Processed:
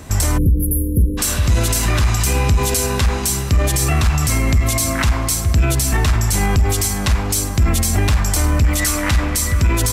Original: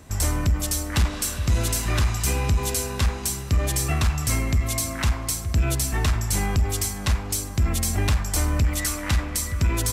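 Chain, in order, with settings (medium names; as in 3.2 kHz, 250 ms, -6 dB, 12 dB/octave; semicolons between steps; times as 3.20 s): spectral selection erased 0.38–1.18 s, 550–9800 Hz; loudness maximiser +18 dB; trim -7 dB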